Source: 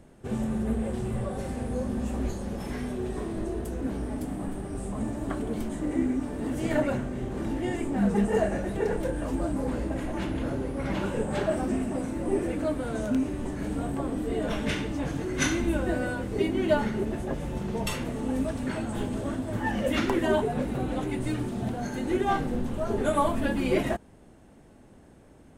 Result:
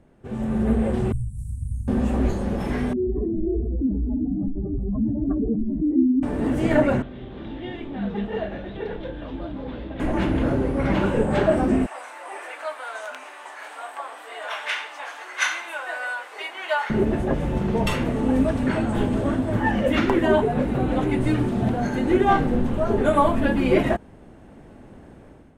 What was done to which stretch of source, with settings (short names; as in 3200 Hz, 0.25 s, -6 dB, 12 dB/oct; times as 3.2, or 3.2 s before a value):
1.12–1.88 elliptic band-stop 110–8500 Hz, stop band 60 dB
2.93–6.23 spectral contrast raised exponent 2.6
7.02–10 ladder low-pass 3800 Hz, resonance 75%
11.86–16.9 HPF 830 Hz 24 dB/oct
whole clip: tone controls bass 0 dB, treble -10 dB; AGC gain up to 11.5 dB; gain -3 dB